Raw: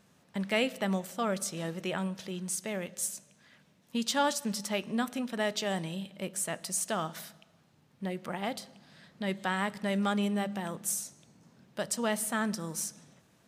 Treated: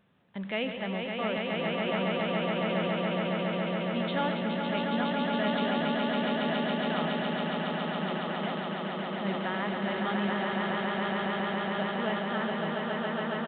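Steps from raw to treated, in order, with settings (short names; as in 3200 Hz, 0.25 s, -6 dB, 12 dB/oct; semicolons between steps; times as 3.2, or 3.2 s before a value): swelling echo 0.139 s, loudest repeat 8, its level -4 dB; transient shaper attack 0 dB, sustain +6 dB; downsampling 8000 Hz; gain -3.5 dB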